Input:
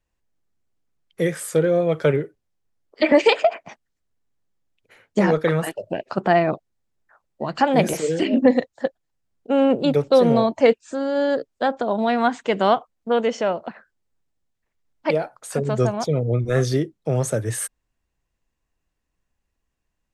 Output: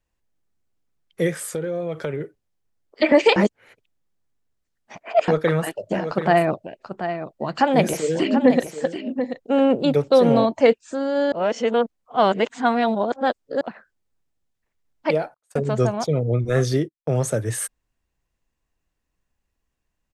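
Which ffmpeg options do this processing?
-filter_complex "[0:a]asplit=3[a][b][c];[a]afade=t=out:st=1.45:d=0.02[d];[b]acompressor=threshold=-23dB:ratio=6:attack=3.2:release=140:knee=1:detection=peak,afade=t=in:st=1.45:d=0.02,afade=t=out:st=2.2:d=0.02[e];[c]afade=t=in:st=2.2:d=0.02[f];[d][e][f]amix=inputs=3:normalize=0,asplit=3[g][h][i];[g]afade=t=out:st=5.86:d=0.02[j];[h]aecho=1:1:735:0.335,afade=t=in:st=5.86:d=0.02,afade=t=out:st=10.44:d=0.02[k];[i]afade=t=in:st=10.44:d=0.02[l];[j][k][l]amix=inputs=3:normalize=0,asettb=1/sr,asplit=3[m][n][o];[m]atrim=end=15.344[p];[n]atrim=start=15.34:end=17.19,asetpts=PTS-STARTPTS,afade=t=in:d=0.004:c=qsin,afade=t=out:st=1.846:d=0.004:c=qsin,agate=range=-34dB:threshold=-33dB:ratio=16:release=100:detection=peak[q];[o]atrim=start=17.186[r];[p][q]acrossfade=d=0.004:c1=hsin:c2=qsin[s];[s][r]acrossfade=d=0.004:c1=qsin:c2=hsin,asplit=5[t][u][v][w][x];[t]atrim=end=3.362[y];[u]atrim=start=3.358:end=5.282,asetpts=PTS-STARTPTS,areverse[z];[v]atrim=start=5.278:end=11.322[aa];[w]atrim=start=11.318:end=13.612,asetpts=PTS-STARTPTS,areverse[ab];[x]atrim=start=13.608[ac];[y][z]acrossfade=d=0.004:c1=hsin:c2=hsin[ad];[ad][aa]acrossfade=d=0.004:c1=hsin:c2=hsin[ae];[ae][ab]acrossfade=d=0.004:c1=hsin:c2=hsin[af];[af][ac]acrossfade=d=0.004:c1=hsin:c2=hsin"

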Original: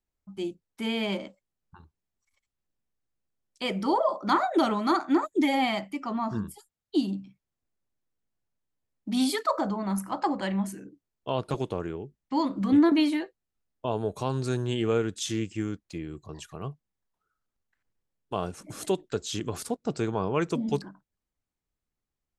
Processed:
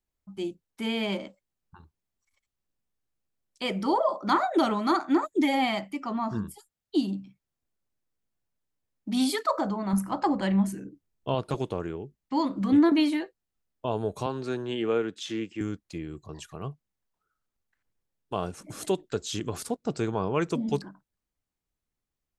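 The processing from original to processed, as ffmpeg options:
-filter_complex "[0:a]asettb=1/sr,asplit=3[a][b][c];[a]atrim=end=9.934[d];[b]atrim=start=9.93:end=11.35,asetpts=PTS-STARTPTS,afade=t=in:d=0.004:c=qsin,afade=t=out:st=1.416:d=0.004:c=qsin,lowshelf=f=240:g=8.5[e];[c]atrim=start=11.346[f];[d][e]acrossfade=d=0.004:c1=hsin:c2=qsin[g];[g][f]acrossfade=d=0.004:c1=qsin:c2=hsin,asettb=1/sr,asplit=3[h][i][j];[h]atrim=end=14.264[k];[i]atrim=start=14.26:end=15.61,asetpts=PTS-STARTPTS,afade=t=in:d=0.004:c=qsin,afade=t=out:st=1.346:d=0.004:c=qsin,acrossover=split=190 4300:gain=0.158 1 0.2[l][m][n];[l][m][n]amix=inputs=3:normalize=0[o];[j]atrim=start=15.606[p];[k][o]acrossfade=d=0.004:c1=hsin:c2=qsin[q];[q][p]acrossfade=d=0.004:c1=qsin:c2=hsin"

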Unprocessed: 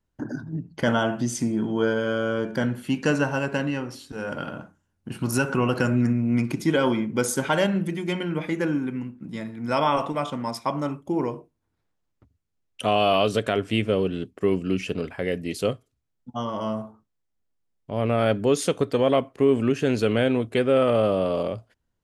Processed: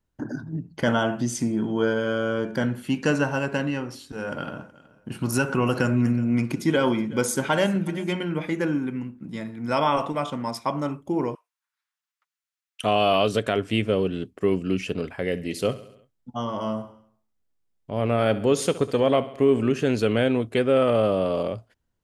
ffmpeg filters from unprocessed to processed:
-filter_complex "[0:a]asettb=1/sr,asplit=3[a][b][c];[a]atrim=end=4.074[d];[b]atrim=start=4.07:end=8.24,asetpts=PTS-STARTPTS,afade=t=in:d=0.004:c=qsin,afade=t=out:st=4.166:d=0.004:c=qsin,aecho=1:1:372|744:0.0944|0.0264,atrim=end_sample=183897[e];[c]atrim=start=8.236[f];[d][e]acrossfade=d=0.004:c1=hsin:c2=qsin[g];[g][f]acrossfade=d=0.004:c1=qsin:c2=hsin,asettb=1/sr,asplit=3[h][i][j];[h]atrim=end=11.354[k];[i]atrim=start=11.35:end=12.84,asetpts=PTS-STARTPTS,afade=t=in:d=0.004:c=qsin,afade=t=out:st=1.486:d=0.004:c=qsin,highpass=f=1.2k:w=0.5412,highpass=f=1.2k:w=1.3066[l];[j]atrim=start=12.836[m];[k][l]acrossfade=d=0.004:c1=hsin:c2=qsin[n];[n][m]acrossfade=d=0.004:c1=qsin:c2=hsin,asettb=1/sr,asplit=3[o][p][q];[o]atrim=end=15.284[r];[p]atrim=start=15.28:end=19.83,asetpts=PTS-STARTPTS,afade=t=in:d=0.004:c=qsin,afade=t=out:st=4.546:d=0.004:c=qsin,aecho=1:1:68|136|204|272|340:0.15|0.0868|0.0503|0.0292|0.0169,atrim=end_sample=200655[s];[q]atrim=start=19.826[t];[r][s]acrossfade=d=0.004:c1=hsin:c2=qsin[u];[u][t]acrossfade=d=0.004:c1=qsin:c2=hsin"

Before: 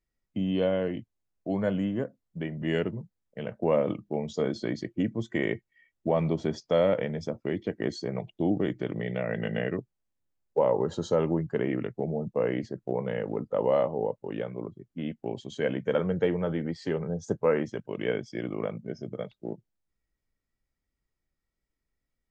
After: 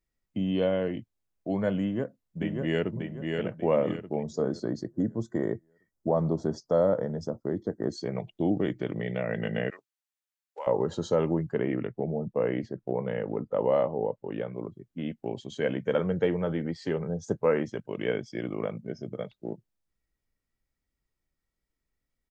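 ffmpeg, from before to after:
-filter_complex "[0:a]asplit=2[a][b];[b]afade=t=in:st=1.82:d=0.01,afade=t=out:st=2.93:d=0.01,aecho=0:1:590|1180|1770|2360|2950:0.668344|0.23392|0.0818721|0.0286552|0.0100293[c];[a][c]amix=inputs=2:normalize=0,asettb=1/sr,asplit=3[d][e][f];[d]atrim=end=4.234[g];[e]atrim=start=4.23:end=7.98,asetpts=PTS-STARTPTS,afade=t=in:d=0.004:c=qsin,afade=t=out:st=3.746:d=0.004:c=qsin,asuperstop=centerf=2600:order=4:qfactor=0.8[h];[f]atrim=start=7.976[i];[g][h]acrossfade=d=0.004:c1=hsin:c2=qsin[j];[j][i]acrossfade=d=0.004:c1=qsin:c2=hsin,asettb=1/sr,asplit=3[k][l][m];[k]atrim=end=9.704[n];[l]atrim=start=9.7:end=10.67,asetpts=PTS-STARTPTS,afade=t=in:d=0.004:c=qsin,afade=t=out:st=0.966:d=0.004:c=qsin,highpass=1.4k[o];[m]atrim=start=10.666[p];[n][o]acrossfade=d=0.004:c1=hsin:c2=qsin[q];[q][p]acrossfade=d=0.004:c1=qsin:c2=hsin,asettb=1/sr,asplit=3[r][s][t];[r]atrim=end=11.544[u];[s]atrim=start=11.54:end=14.54,asetpts=PTS-STARTPTS,afade=t=in:d=0.004:c=qsin,afade=t=out:st=2.996:d=0.004:c=qsin,highshelf=f=5.2k:g=-10.5[v];[t]atrim=start=14.536[w];[u][v]acrossfade=d=0.004:c1=hsin:c2=qsin[x];[x][w]acrossfade=d=0.004:c1=qsin:c2=hsin"

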